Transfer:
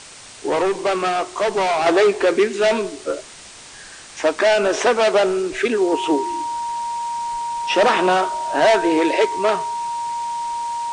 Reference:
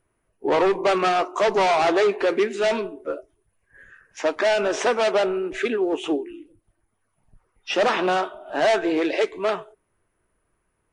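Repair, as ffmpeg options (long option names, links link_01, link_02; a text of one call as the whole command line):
ffmpeg -i in.wav -af "bandreject=frequency=940:width=30,afwtdn=0.014,asetnsamples=nb_out_samples=441:pad=0,asendcmd='1.86 volume volume -4.5dB',volume=0dB" out.wav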